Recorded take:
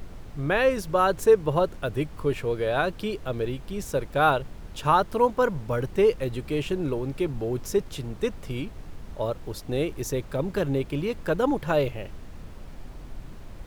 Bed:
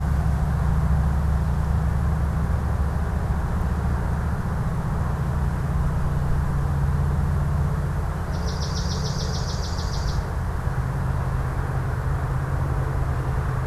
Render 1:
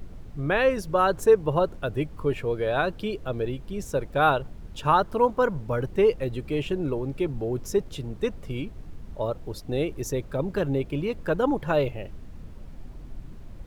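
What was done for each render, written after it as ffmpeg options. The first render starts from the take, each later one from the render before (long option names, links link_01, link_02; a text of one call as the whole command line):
ffmpeg -i in.wav -af "afftdn=noise_reduction=7:noise_floor=-43" out.wav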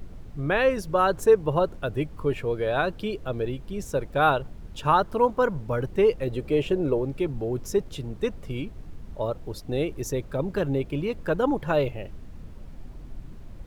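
ffmpeg -i in.wav -filter_complex "[0:a]asettb=1/sr,asplit=3[link_01][link_02][link_03];[link_01]atrim=end=6.274[link_04];[link_02]atrim=start=6.27:end=7.05,asetpts=PTS-STARTPTS,afade=type=in:duration=0.004:curve=qsin,afade=type=out:start_time=0.776:duration=0.004:curve=qsin,equalizer=frequency=510:width=1.4:gain=7[link_05];[link_03]atrim=start=7.046[link_06];[link_04][link_05]acrossfade=duration=0.004:curve1=hsin:curve2=qsin[link_07];[link_07][link_06]acrossfade=duration=0.004:curve1=qsin:curve2=hsin" out.wav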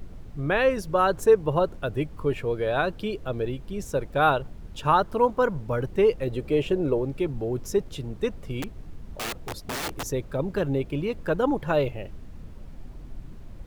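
ffmpeg -i in.wav -filter_complex "[0:a]asettb=1/sr,asplit=3[link_01][link_02][link_03];[link_01]atrim=end=8.624[link_04];[link_02]atrim=start=8.62:end=10.03,asetpts=PTS-STARTPTS,afade=type=in:duration=0.004:curve=qsin,afade=type=out:start_time=1.406:duration=0.004:curve=qsin,aeval=exprs='(mod(20*val(0)+1,2)-1)/20':channel_layout=same[link_05];[link_03]atrim=start=10.026[link_06];[link_04][link_05]acrossfade=duration=0.004:curve1=hsin:curve2=qsin[link_07];[link_07][link_06]acrossfade=duration=0.004:curve1=qsin:curve2=hsin" out.wav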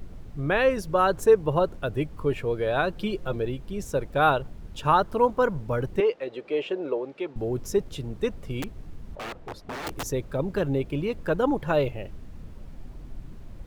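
ffmpeg -i in.wav -filter_complex "[0:a]asettb=1/sr,asplit=3[link_01][link_02][link_03];[link_01]atrim=end=2.954[link_04];[link_02]atrim=start=2.95:end=3.36,asetpts=PTS-STARTPTS,afade=type=in:duration=0.004:curve=qsin,afade=type=out:start_time=0.406:duration=0.004:curve=qsin,aecho=1:1:5.6:0.65,atrim=end_sample=18081[link_05];[link_03]atrim=start=3.356[link_06];[link_04][link_05]acrossfade=duration=0.004:curve1=hsin:curve2=qsin[link_07];[link_07][link_06]acrossfade=duration=0.004:curve1=qsin:curve2=hsin,asettb=1/sr,asplit=3[link_08][link_09][link_10];[link_08]atrim=end=6.004[link_11];[link_09]atrim=start=6:end=7.36,asetpts=PTS-STARTPTS,afade=type=in:duration=0.004:curve=qsin,afade=type=out:start_time=1.356:duration=0.004:curve=qsin,highpass=440,lowpass=4200[link_12];[link_10]atrim=start=7.356[link_13];[link_11][link_12]acrossfade=duration=0.004:curve1=hsin:curve2=qsin[link_14];[link_14][link_13]acrossfade=duration=0.004:curve1=qsin:curve2=hsin,asettb=1/sr,asplit=3[link_15][link_16][link_17];[link_15]atrim=end=9.154[link_18];[link_16]atrim=start=9.15:end=9.87,asetpts=PTS-STARTPTS,afade=type=in:duration=0.004:curve=qsin,afade=type=out:start_time=0.716:duration=0.004:curve=qsin,asplit=2[link_19][link_20];[link_20]highpass=frequency=720:poles=1,volume=8dB,asoftclip=type=tanh:threshold=-26dB[link_21];[link_19][link_21]amix=inputs=2:normalize=0,lowpass=frequency=1300:poles=1,volume=-6dB[link_22];[link_17]atrim=start=9.866[link_23];[link_18][link_22]acrossfade=duration=0.004:curve1=hsin:curve2=qsin[link_24];[link_24][link_23]acrossfade=duration=0.004:curve1=qsin:curve2=hsin" out.wav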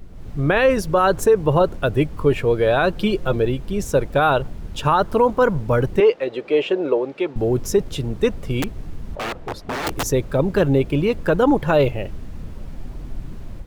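ffmpeg -i in.wav -af "alimiter=limit=-16dB:level=0:latency=1:release=25,dynaudnorm=framelen=140:gausssize=3:maxgain=9dB" out.wav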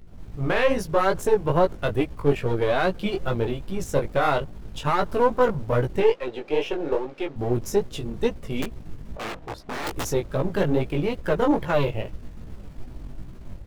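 ffmpeg -i in.wav -af "aeval=exprs='if(lt(val(0),0),0.447*val(0),val(0))':channel_layout=same,flanger=delay=16:depth=5.1:speed=2.4" out.wav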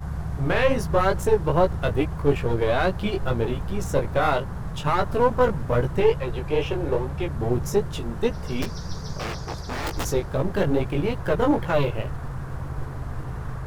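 ffmpeg -i in.wav -i bed.wav -filter_complex "[1:a]volume=-8.5dB[link_01];[0:a][link_01]amix=inputs=2:normalize=0" out.wav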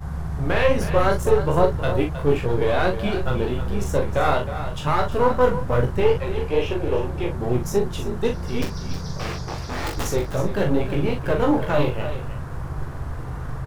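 ffmpeg -i in.wav -filter_complex "[0:a]asplit=2[link_01][link_02];[link_02]adelay=40,volume=-5.5dB[link_03];[link_01][link_03]amix=inputs=2:normalize=0,aecho=1:1:314:0.282" out.wav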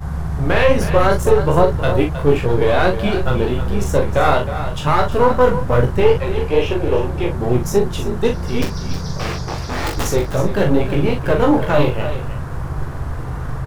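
ffmpeg -i in.wav -af "volume=5.5dB,alimiter=limit=-1dB:level=0:latency=1" out.wav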